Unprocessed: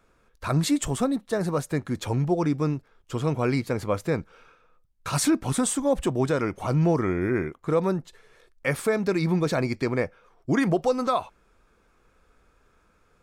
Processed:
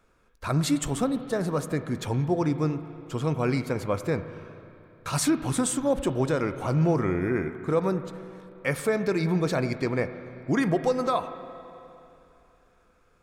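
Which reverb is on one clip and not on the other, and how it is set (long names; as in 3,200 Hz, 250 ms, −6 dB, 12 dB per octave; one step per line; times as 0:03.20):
spring reverb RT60 2.9 s, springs 32/45/49 ms, chirp 65 ms, DRR 10.5 dB
level −1.5 dB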